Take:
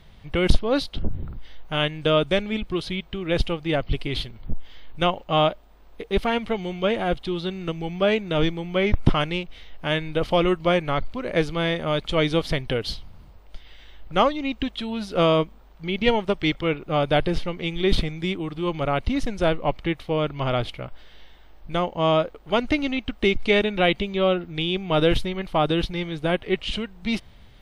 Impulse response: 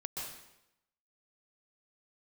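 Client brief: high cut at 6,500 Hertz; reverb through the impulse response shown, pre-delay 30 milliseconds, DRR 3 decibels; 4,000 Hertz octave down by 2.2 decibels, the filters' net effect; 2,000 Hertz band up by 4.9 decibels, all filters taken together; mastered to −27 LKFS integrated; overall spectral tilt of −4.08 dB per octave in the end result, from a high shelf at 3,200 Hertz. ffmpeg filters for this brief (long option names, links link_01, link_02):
-filter_complex "[0:a]lowpass=6500,equalizer=frequency=2000:width_type=o:gain=9,highshelf=frequency=3200:gain=-6,equalizer=frequency=4000:width_type=o:gain=-3,asplit=2[link_01][link_02];[1:a]atrim=start_sample=2205,adelay=30[link_03];[link_02][link_03]afir=irnorm=-1:irlink=0,volume=-3.5dB[link_04];[link_01][link_04]amix=inputs=2:normalize=0,volume=-5.5dB"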